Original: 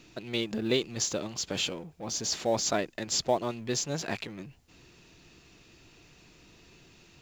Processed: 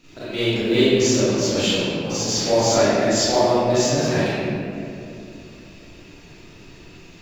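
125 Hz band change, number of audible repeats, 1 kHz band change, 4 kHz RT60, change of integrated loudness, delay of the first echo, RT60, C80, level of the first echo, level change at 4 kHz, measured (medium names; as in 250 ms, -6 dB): +14.5 dB, no echo, +11.5 dB, 1.4 s, +11.5 dB, no echo, 2.6 s, -3.5 dB, no echo, +9.5 dB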